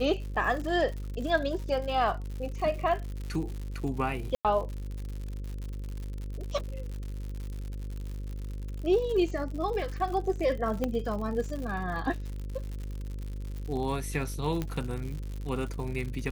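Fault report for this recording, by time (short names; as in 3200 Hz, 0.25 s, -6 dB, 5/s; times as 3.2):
buzz 50 Hz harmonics 11 -36 dBFS
crackle 120/s -36 dBFS
4.35–4.45 gap 97 ms
10.84 pop -16 dBFS
14.62 pop -18 dBFS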